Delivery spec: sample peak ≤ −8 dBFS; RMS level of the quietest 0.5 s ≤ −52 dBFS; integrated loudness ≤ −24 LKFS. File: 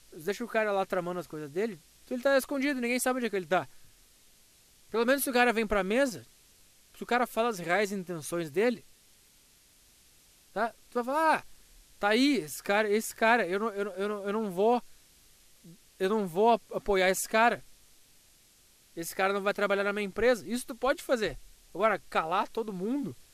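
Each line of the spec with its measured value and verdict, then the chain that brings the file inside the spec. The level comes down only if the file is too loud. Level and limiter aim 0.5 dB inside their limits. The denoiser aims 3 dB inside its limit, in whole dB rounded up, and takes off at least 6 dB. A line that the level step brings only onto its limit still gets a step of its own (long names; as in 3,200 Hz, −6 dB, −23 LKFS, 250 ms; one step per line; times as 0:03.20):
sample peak −11.0 dBFS: in spec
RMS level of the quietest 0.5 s −62 dBFS: in spec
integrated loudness −29.5 LKFS: in spec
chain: no processing needed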